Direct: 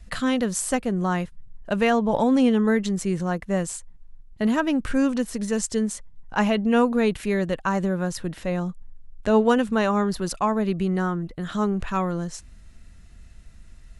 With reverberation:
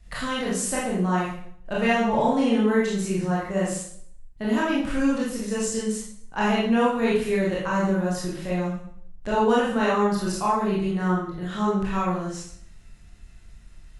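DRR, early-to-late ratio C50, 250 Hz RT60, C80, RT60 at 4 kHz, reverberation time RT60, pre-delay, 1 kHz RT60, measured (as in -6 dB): -7.0 dB, 0.5 dB, 0.65 s, 5.5 dB, 0.55 s, 0.60 s, 20 ms, 0.60 s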